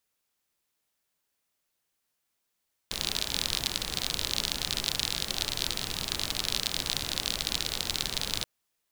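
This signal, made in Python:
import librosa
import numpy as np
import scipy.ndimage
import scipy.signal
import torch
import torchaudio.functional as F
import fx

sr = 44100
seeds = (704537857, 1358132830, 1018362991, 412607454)

y = fx.rain(sr, seeds[0], length_s=5.53, drops_per_s=45.0, hz=3900.0, bed_db=-5)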